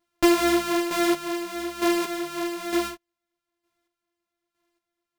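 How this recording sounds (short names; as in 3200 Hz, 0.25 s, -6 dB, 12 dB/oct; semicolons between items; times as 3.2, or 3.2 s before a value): a buzz of ramps at a fixed pitch in blocks of 128 samples; chopped level 1.1 Hz, depth 60%, duty 25%; a shimmering, thickened sound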